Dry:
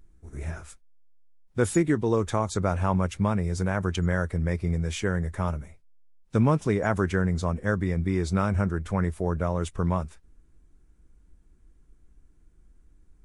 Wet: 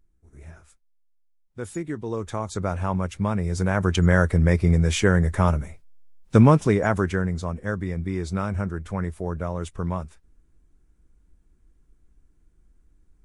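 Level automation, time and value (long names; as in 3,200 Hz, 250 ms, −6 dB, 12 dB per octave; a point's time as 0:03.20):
0:01.61 −10 dB
0:02.64 −1 dB
0:03.14 −1 dB
0:04.17 +8 dB
0:06.36 +8 dB
0:07.44 −2 dB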